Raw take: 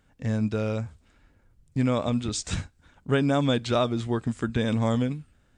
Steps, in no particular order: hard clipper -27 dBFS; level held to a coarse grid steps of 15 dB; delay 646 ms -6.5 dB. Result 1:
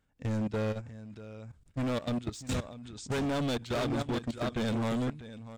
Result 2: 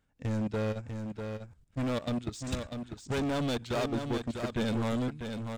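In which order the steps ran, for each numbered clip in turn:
delay > hard clipper > level held to a coarse grid; hard clipper > level held to a coarse grid > delay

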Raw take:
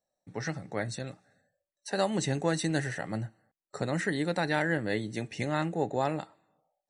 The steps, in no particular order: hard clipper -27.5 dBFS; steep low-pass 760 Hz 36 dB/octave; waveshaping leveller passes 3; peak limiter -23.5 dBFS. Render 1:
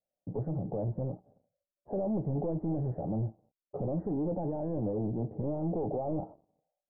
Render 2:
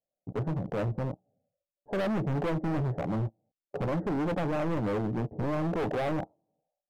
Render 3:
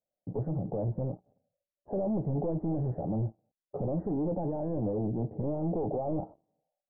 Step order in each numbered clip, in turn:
peak limiter > hard clipper > waveshaping leveller > steep low-pass; waveshaping leveller > steep low-pass > hard clipper > peak limiter; peak limiter > waveshaping leveller > hard clipper > steep low-pass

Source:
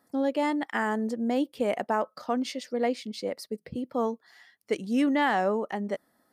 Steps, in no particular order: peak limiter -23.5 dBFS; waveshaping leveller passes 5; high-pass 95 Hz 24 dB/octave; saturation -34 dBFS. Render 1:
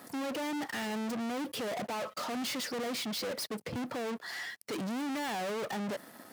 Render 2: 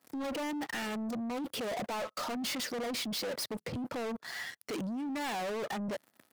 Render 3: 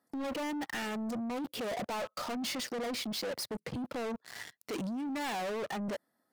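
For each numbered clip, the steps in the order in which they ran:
peak limiter > saturation > waveshaping leveller > high-pass; peak limiter > waveshaping leveller > high-pass > saturation; waveshaping leveller > peak limiter > high-pass > saturation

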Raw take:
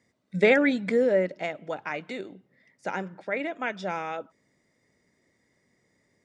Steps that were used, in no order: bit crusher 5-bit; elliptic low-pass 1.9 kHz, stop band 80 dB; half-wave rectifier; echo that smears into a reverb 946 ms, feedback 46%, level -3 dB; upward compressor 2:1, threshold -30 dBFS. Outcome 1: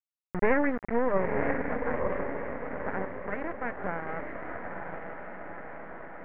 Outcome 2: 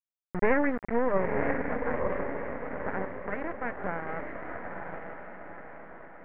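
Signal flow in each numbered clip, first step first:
bit crusher > echo that smears into a reverb > half-wave rectifier > upward compressor > elliptic low-pass; bit crusher > upward compressor > echo that smears into a reverb > half-wave rectifier > elliptic low-pass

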